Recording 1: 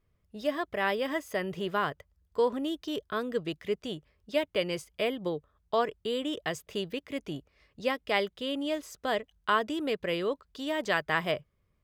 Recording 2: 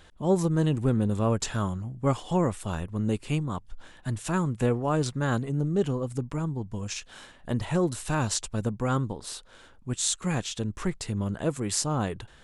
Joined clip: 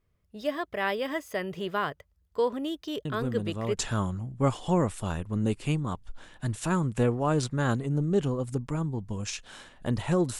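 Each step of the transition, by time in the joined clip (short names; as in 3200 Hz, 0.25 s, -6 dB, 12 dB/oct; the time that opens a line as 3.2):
recording 1
3.05 add recording 2 from 0.68 s 0.72 s -8 dB
3.77 switch to recording 2 from 1.4 s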